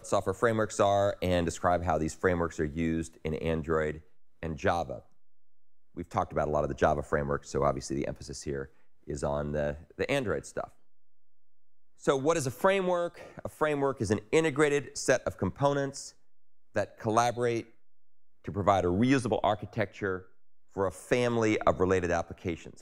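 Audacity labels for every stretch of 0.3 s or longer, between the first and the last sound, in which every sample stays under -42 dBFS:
3.990000	4.430000	silence
4.990000	5.970000	silence
8.660000	9.070000	silence
10.650000	12.040000	silence
16.100000	16.750000	silence
17.630000	18.450000	silence
20.210000	20.760000	silence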